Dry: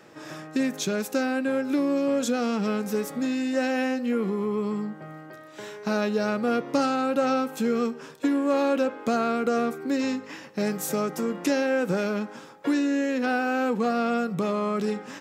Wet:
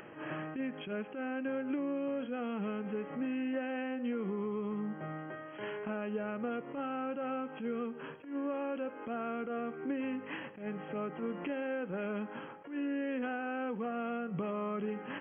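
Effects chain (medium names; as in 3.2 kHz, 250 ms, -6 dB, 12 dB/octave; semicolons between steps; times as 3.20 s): compression 16:1, threshold -32 dBFS, peak gain reduction 14.5 dB; brick-wall FIR low-pass 3.3 kHz; upward compressor, threshold -49 dBFS; attacks held to a fixed rise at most 130 dB/s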